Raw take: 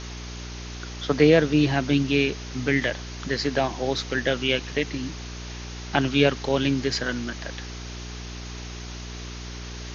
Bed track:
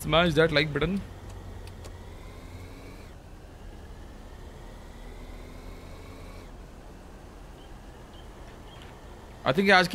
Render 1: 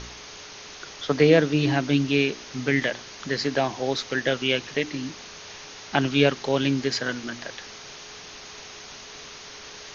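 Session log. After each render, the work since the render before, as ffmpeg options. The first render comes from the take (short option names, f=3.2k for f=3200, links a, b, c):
-af "bandreject=f=60:t=h:w=4,bandreject=f=120:t=h:w=4,bandreject=f=180:t=h:w=4,bandreject=f=240:t=h:w=4,bandreject=f=300:t=h:w=4,bandreject=f=360:t=h:w=4"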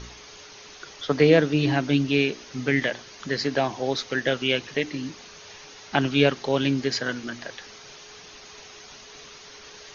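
-af "afftdn=nr=6:nf=-42"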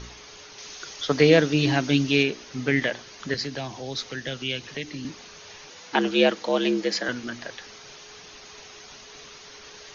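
-filter_complex "[0:a]asettb=1/sr,asplit=3[a][b][c];[a]atrim=end=0.584[d];[b]atrim=start=0.58:end=2.23,asetpts=PTS-STARTPTS,afade=t=in:d=0.004:c=qsin,afade=t=out:st=1.646:d=0.004:c=qsin,highshelf=f=4.1k:g=10[e];[c]atrim=start=2.226[f];[d][e]acrossfade=d=0.004:c1=hsin:c2=qsin[g];[g][f]acrossfade=d=0.004:c1=qsin:c2=hsin,asettb=1/sr,asplit=3[h][i][j];[h]atrim=end=3.344[k];[i]atrim=start=3.34:end=5.05,asetpts=PTS-STARTPTS,afade=t=in:d=0.004:c=qsin,afade=t=out:st=1.706:d=0.004:c=qsin,acrossover=split=170|3000[l][m][n];[m]acompressor=threshold=-39dB:ratio=2:attack=3.2:release=140:knee=2.83:detection=peak[o];[l][o][n]amix=inputs=3:normalize=0[p];[j]atrim=start=5.046[q];[k][p]acrossfade=d=0.004:c1=hsin:c2=qsin[r];[r][q]acrossfade=d=0.004:c1=qsin:c2=hsin,asettb=1/sr,asplit=3[s][t][u];[s]atrim=end=5.704[v];[t]atrim=start=5.7:end=7.09,asetpts=PTS-STARTPTS,afade=t=in:d=0.004:c=qsin,afade=t=out:st=1.386:d=0.004:c=qsin,afreqshift=74[w];[u]atrim=start=7.086[x];[v][w]acrossfade=d=0.004:c1=hsin:c2=qsin[y];[y][x]acrossfade=d=0.004:c1=qsin:c2=hsin"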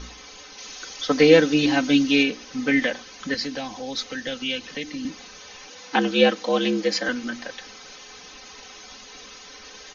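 -af "aecho=1:1:3.9:0.78"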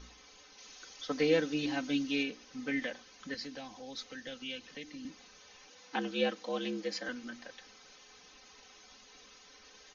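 -af "volume=-14dB"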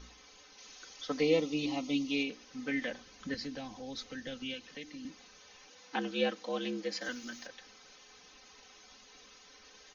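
-filter_complex "[0:a]asettb=1/sr,asplit=3[a][b][c];[a]atrim=end=1.204[d];[b]atrim=start=1.2:end=2.3,asetpts=PTS-STARTPTS,afade=t=in:d=0.004:c=qsin,afade=t=out:st=1.096:d=0.004:c=qsin,asuperstop=centerf=1600:order=4:qfactor=2.1[e];[c]atrim=start=2.296[f];[d][e]acrossfade=d=0.004:c1=hsin:c2=qsin[g];[g][f]acrossfade=d=0.004:c1=qsin:c2=hsin,asettb=1/sr,asplit=3[h][i][j];[h]atrim=end=2.874[k];[i]atrim=start=2.87:end=4.54,asetpts=PTS-STARTPTS,afade=t=in:d=0.004:c=qsin,afade=t=out:st=1.666:d=0.004:c=qsin,lowshelf=f=260:g=9.5[l];[j]atrim=start=4.536[m];[k][l]acrossfade=d=0.004:c1=hsin:c2=qsin[n];[n][m]acrossfade=d=0.004:c1=qsin:c2=hsin,asettb=1/sr,asplit=3[o][p][q];[o]atrim=end=7.014[r];[p]atrim=start=7.01:end=7.47,asetpts=PTS-STARTPTS,afade=t=in:d=0.004:c=qsin,afade=t=out:st=0.456:d=0.004:c=qsin,aemphasis=mode=production:type=75fm[s];[q]atrim=start=7.466[t];[r][s]acrossfade=d=0.004:c1=hsin:c2=qsin[u];[u][t]acrossfade=d=0.004:c1=qsin:c2=hsin"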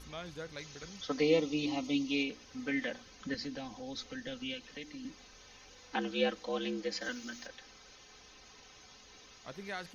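-filter_complex "[1:a]volume=-22.5dB[a];[0:a][a]amix=inputs=2:normalize=0"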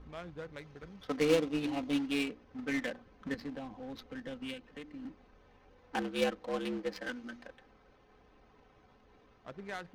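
-af "acrusher=bits=2:mode=log:mix=0:aa=0.000001,adynamicsmooth=sensitivity=7:basefreq=1.1k"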